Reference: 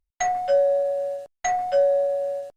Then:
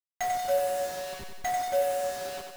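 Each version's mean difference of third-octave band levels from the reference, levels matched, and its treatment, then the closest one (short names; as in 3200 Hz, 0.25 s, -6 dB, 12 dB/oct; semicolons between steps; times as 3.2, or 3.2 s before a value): 14.5 dB: level-crossing sampler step -27 dBFS; on a send: thinning echo 92 ms, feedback 62%, high-pass 180 Hz, level -5 dB; on the sum: gain -6.5 dB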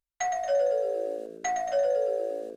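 4.0 dB: low shelf 270 Hz -9.5 dB; on a send: frequency-shifting echo 0.114 s, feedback 57%, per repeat -55 Hz, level -7.5 dB; on the sum: gain -4.5 dB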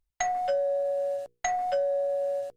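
2.5 dB: notches 60/120/180/240/300/360/420/480 Hz; compressor 4:1, threshold -28 dBFS, peak gain reduction 10.5 dB; gain +1.5 dB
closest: third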